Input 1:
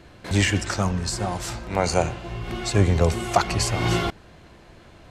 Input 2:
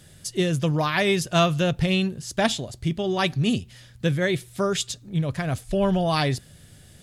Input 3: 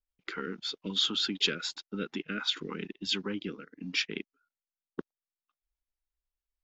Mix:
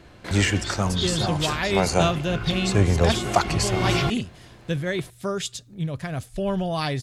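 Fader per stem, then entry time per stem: -0.5, -3.5, -1.0 dB; 0.00, 0.65, 0.00 s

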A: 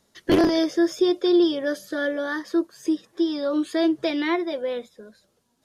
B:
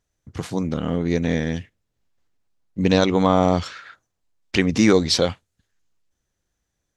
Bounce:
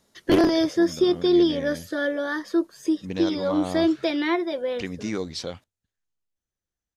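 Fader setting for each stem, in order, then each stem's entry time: 0.0, -13.5 dB; 0.00, 0.25 s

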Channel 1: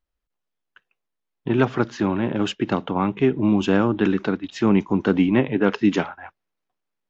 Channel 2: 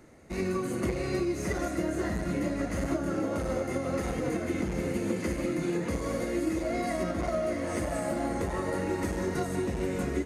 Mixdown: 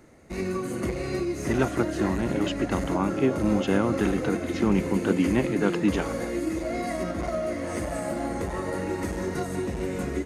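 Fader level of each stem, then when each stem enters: -5.5, +1.0 dB; 0.00, 0.00 s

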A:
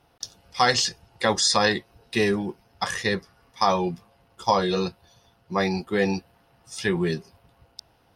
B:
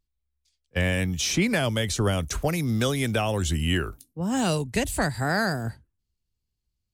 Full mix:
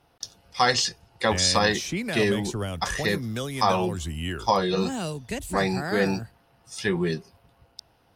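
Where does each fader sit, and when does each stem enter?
-1.0, -6.5 dB; 0.00, 0.55 s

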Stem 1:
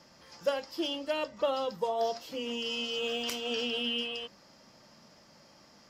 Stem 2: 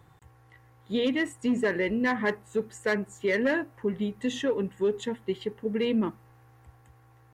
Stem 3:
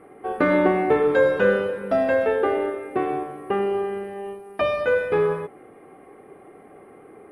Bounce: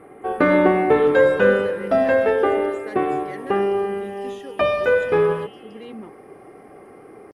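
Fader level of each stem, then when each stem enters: -18.0, -11.5, +3.0 dB; 1.55, 0.00, 0.00 s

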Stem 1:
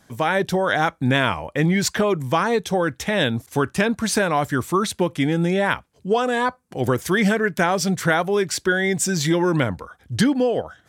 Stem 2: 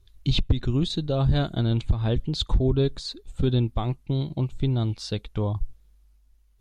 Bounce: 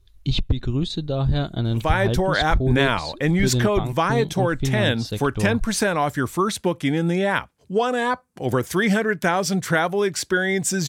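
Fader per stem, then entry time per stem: -1.0, +0.5 dB; 1.65, 0.00 s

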